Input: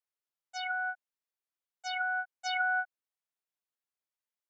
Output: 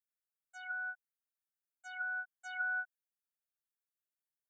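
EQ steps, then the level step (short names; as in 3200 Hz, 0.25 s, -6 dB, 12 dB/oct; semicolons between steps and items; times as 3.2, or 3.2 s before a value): HPF 920 Hz 12 dB/oct; band shelf 3000 Hz -15.5 dB 1.3 oct; fixed phaser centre 2300 Hz, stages 4; 0.0 dB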